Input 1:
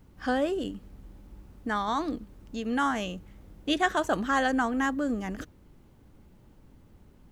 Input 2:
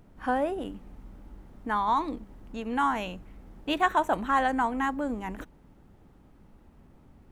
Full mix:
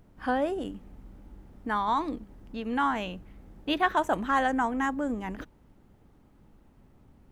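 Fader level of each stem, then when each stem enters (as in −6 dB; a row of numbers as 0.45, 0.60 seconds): −9.5, −3.5 decibels; 0.00, 0.00 seconds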